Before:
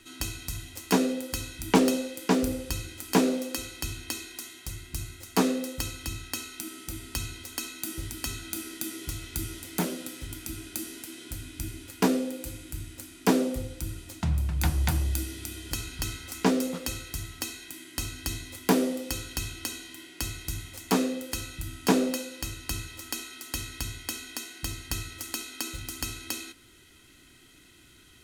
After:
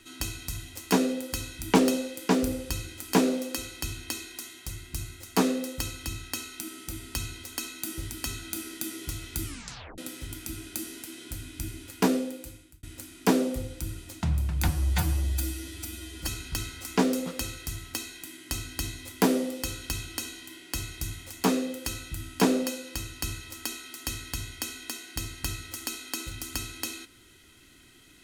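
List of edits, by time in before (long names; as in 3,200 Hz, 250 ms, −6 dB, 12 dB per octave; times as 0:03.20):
0:09.45: tape stop 0.53 s
0:12.16–0:12.83: fade out
0:14.68–0:15.74: time-stretch 1.5×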